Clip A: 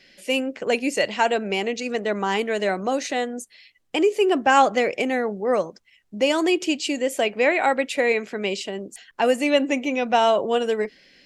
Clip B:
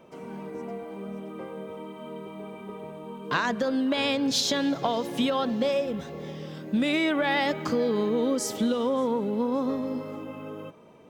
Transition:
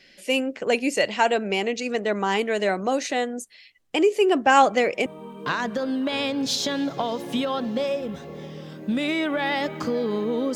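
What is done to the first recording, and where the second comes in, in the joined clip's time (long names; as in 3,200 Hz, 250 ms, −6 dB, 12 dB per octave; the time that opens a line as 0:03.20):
clip A
0:04.51: mix in clip B from 0:02.36 0.55 s −9.5 dB
0:05.06: continue with clip B from 0:02.91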